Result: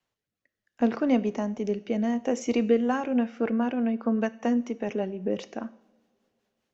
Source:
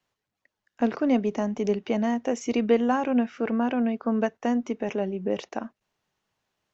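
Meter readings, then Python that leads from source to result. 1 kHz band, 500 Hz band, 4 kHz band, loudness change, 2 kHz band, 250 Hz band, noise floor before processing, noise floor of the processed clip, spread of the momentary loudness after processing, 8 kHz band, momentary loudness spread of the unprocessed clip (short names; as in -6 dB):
-3.5 dB, -1.5 dB, -2.0 dB, -1.0 dB, -2.0 dB, -0.5 dB, -85 dBFS, under -85 dBFS, 8 LU, n/a, 7 LU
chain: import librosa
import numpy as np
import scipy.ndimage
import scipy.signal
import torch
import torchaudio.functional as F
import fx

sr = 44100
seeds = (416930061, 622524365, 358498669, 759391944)

y = fx.rotary_switch(x, sr, hz=0.7, then_hz=5.0, switch_at_s=2.4)
y = fx.rev_double_slope(y, sr, seeds[0], early_s=0.63, late_s=2.8, knee_db=-21, drr_db=14.5)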